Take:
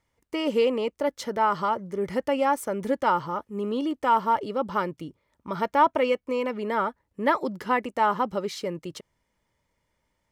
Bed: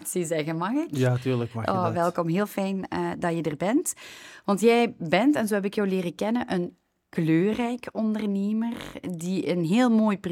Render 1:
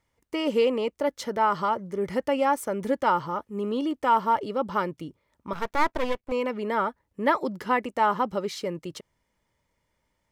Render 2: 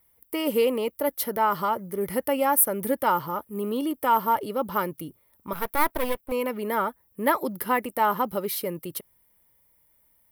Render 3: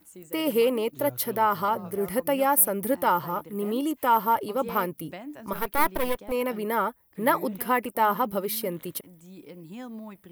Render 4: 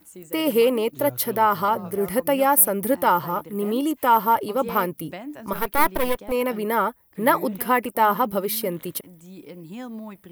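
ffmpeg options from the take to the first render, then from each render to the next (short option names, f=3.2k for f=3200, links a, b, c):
-filter_complex "[0:a]asettb=1/sr,asplit=3[a][b][c];[a]atrim=end=5.534[d];[b]atrim=start=5.53:end=6.32,asetpts=PTS-STARTPTS,afade=t=in:d=0.004:c=qsin,afade=t=out:st=0.786:d=0.004:c=qsin,aeval=exprs='max(val(0),0)':c=same[e];[c]atrim=start=6.316[f];[d][e]acrossfade=d=0.004:c1=hsin:c2=qsin[g];[g][f]acrossfade=d=0.004:c1=qsin:c2=hsin"
-af "aexciter=amount=9.4:drive=9.7:freq=10k"
-filter_complex "[1:a]volume=-19dB[a];[0:a][a]amix=inputs=2:normalize=0"
-af "volume=4dB"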